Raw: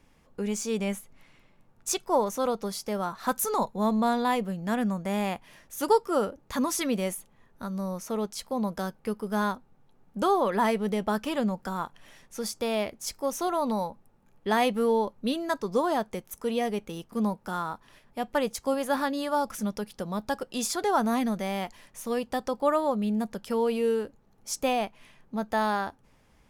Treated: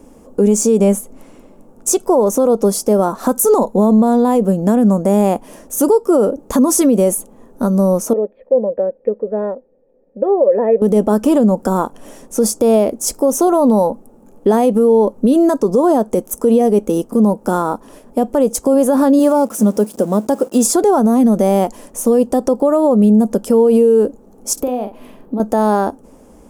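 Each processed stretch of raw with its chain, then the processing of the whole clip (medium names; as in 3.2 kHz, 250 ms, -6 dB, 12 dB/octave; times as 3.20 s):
8.13–10.82 s: dynamic bell 760 Hz, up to +4 dB, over -38 dBFS, Q 0.89 + cascade formant filter e
19.19–20.65 s: jump at every zero crossing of -38.5 dBFS + high-pass 100 Hz + upward expansion, over -47 dBFS
24.53–25.40 s: high-order bell 7.3 kHz -11 dB 1.1 oct + compression 5:1, threshold -40 dBFS + doubling 44 ms -8 dB
whole clip: compression, threshold -27 dBFS; graphic EQ 125/250/500/2000/4000/8000 Hz -9/+10/+8/-11/-10/+6 dB; loudness maximiser +19 dB; trim -3.5 dB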